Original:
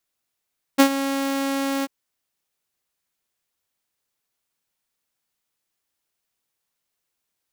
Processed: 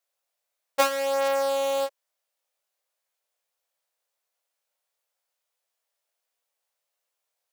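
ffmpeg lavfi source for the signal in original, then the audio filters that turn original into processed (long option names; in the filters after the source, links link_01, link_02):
-f lavfi -i "aevalsrc='0.473*(2*mod(274*t,1)-1)':duration=1.092:sample_rate=44100,afade=type=in:duration=0.022,afade=type=out:start_time=0.022:duration=0.081:silence=0.224,afade=type=out:start_time=1.06:duration=0.032"
-af "flanger=delay=20:depth=2.2:speed=0.3,lowshelf=frequency=380:width_type=q:width=3:gain=-13"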